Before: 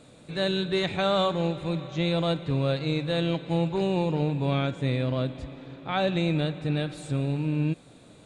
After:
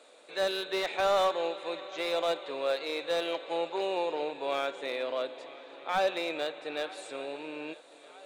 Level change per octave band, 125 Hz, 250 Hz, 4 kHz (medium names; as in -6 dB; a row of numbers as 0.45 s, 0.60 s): under -30 dB, -14.5 dB, -3.5 dB